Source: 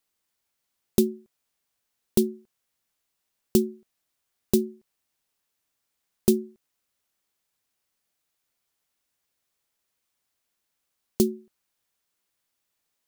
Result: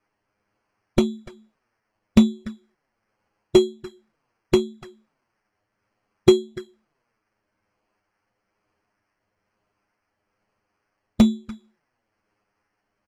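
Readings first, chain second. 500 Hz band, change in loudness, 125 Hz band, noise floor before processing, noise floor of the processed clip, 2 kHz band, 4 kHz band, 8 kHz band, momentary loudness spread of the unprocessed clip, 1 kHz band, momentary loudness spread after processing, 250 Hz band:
+6.0 dB, +5.5 dB, +6.0 dB, -80 dBFS, -78 dBFS, n/a, +9.0 dB, -4.5 dB, 17 LU, +14.0 dB, 19 LU, +6.0 dB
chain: moving spectral ripple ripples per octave 0.75, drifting -1.1 Hz, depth 23 dB; low shelf 190 Hz +2.5 dB; sample-and-hold 12×; air absorption 56 m; on a send: echo 0.292 s -19.5 dB; on the sum: envelope flanger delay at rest 9.8 ms, full sweep at -20.5 dBFS; gain +1 dB

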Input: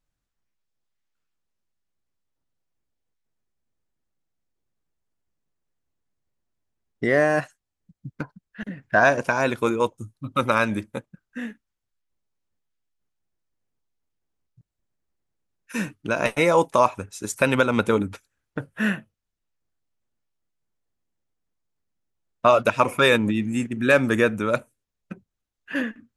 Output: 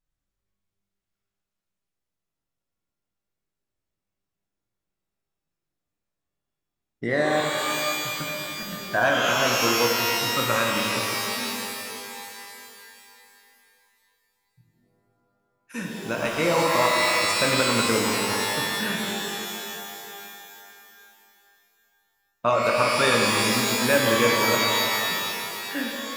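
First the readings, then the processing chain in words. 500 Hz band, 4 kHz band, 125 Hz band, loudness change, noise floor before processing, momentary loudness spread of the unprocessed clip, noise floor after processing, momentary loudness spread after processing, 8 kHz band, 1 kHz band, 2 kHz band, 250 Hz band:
-2.0 dB, +10.5 dB, -2.5 dB, -0.5 dB, -83 dBFS, 18 LU, -85 dBFS, 15 LU, +11.5 dB, +0.5 dB, +1.0 dB, -3.0 dB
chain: shimmer reverb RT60 2.8 s, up +12 st, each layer -2 dB, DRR -0.5 dB; gain -6 dB

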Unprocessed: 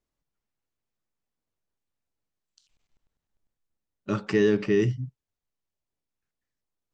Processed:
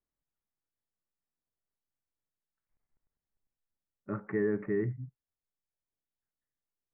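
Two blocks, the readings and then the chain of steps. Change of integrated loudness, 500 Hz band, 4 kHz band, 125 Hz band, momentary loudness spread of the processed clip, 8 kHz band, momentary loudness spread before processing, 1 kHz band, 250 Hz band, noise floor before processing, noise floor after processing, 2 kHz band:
-8.0 dB, -8.5 dB, under -35 dB, -8.5 dB, 13 LU, n/a, 16 LU, -8.5 dB, -8.5 dB, under -85 dBFS, under -85 dBFS, -9.5 dB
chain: steep low-pass 2100 Hz 72 dB/oct; gain -8.5 dB

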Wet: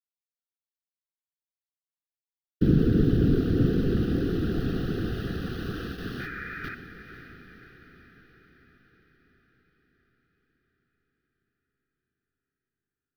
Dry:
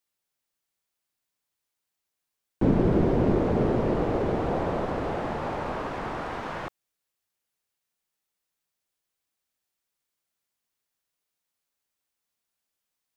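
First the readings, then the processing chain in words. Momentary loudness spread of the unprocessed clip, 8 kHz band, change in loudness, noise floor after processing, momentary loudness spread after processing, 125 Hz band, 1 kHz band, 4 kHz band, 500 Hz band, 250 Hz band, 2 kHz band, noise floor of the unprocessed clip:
11 LU, n/a, 0.0 dB, under -85 dBFS, 17 LU, +3.5 dB, -13.5 dB, +3.0 dB, -5.0 dB, +1.5 dB, +1.0 dB, -84 dBFS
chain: gate with hold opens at -22 dBFS; whisperiser; in parallel at -5.5 dB: sample gate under -34.5 dBFS; on the sum: painted sound noise, 6.19–6.75, 1200–2500 Hz -30 dBFS; Butterworth band-stop 950 Hz, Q 0.95; fixed phaser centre 2200 Hz, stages 6; on a send: diffused feedback echo 0.529 s, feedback 57%, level -11 dB

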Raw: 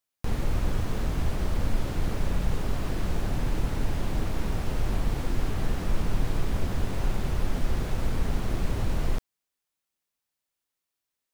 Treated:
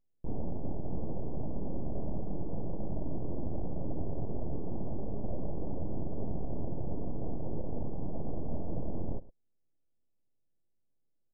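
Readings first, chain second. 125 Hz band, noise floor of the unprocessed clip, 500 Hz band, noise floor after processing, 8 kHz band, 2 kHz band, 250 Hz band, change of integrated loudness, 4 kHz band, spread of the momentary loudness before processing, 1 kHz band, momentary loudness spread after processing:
-8.5 dB, under -85 dBFS, -3.5 dB, -74 dBFS, under -35 dB, under -40 dB, -4.0 dB, -8.5 dB, under -40 dB, 1 LU, -10.0 dB, 1 LU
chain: steep high-pass 250 Hz 72 dB/oct; on a send: echo 0.105 s -21 dB; on the sum: limiter -30.5 dBFS, peak gain reduction 8 dB; full-wave rectifier; Gaussian blur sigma 17 samples; gain +14 dB

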